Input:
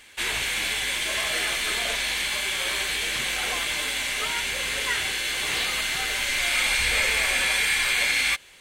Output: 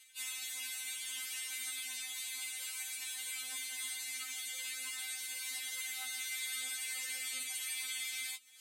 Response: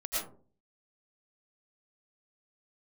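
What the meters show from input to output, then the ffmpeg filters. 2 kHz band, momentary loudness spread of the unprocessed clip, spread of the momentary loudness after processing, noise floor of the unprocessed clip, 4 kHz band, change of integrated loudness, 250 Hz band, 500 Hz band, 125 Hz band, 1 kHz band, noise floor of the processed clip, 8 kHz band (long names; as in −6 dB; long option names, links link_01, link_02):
−19.5 dB, 5 LU, 2 LU, −35 dBFS, −16.5 dB, −15.0 dB, below −25 dB, below −30 dB, below −40 dB, −25.0 dB, −45 dBFS, −9.0 dB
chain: -filter_complex "[0:a]areverse,acompressor=mode=upward:threshold=-44dB:ratio=2.5,areverse,aderivative,anlmdn=0.001,equalizer=frequency=450:width=4:gain=-9,flanger=delay=6.8:depth=7.4:regen=31:speed=0.55:shape=triangular,acrossover=split=350[link_01][link_02];[link_02]acompressor=threshold=-56dB:ratio=2[link_03];[link_01][link_03]amix=inputs=2:normalize=0,afftfilt=real='re*3.46*eq(mod(b,12),0)':imag='im*3.46*eq(mod(b,12),0)':win_size=2048:overlap=0.75,volume=8.5dB"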